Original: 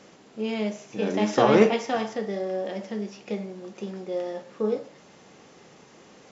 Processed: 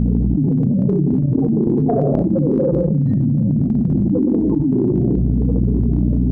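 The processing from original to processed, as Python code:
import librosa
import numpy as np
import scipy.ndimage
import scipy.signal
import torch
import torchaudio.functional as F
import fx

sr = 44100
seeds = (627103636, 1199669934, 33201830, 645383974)

y = fx.pitch_ramps(x, sr, semitones=-11.5, every_ms=161)
y = fx.spec_topn(y, sr, count=4)
y = fx.granulator(y, sr, seeds[0], grain_ms=100.0, per_s=20.0, spray_ms=100.0, spread_st=0)
y = fx.peak_eq(y, sr, hz=180.0, db=9.5, octaves=1.4)
y = fx.room_shoebox(y, sr, seeds[1], volume_m3=880.0, walls='furnished', distance_m=1.9)
y = fx.transient(y, sr, attack_db=3, sustain_db=8)
y = fx.level_steps(y, sr, step_db=14)
y = fx.high_shelf(y, sr, hz=5900.0, db=10.5)
y = fx.dmg_buzz(y, sr, base_hz=60.0, harmonics=4, level_db=-53.0, tilt_db=-4, odd_only=False)
y = fx.env_flatten(y, sr, amount_pct=100)
y = y * librosa.db_to_amplitude(-2.5)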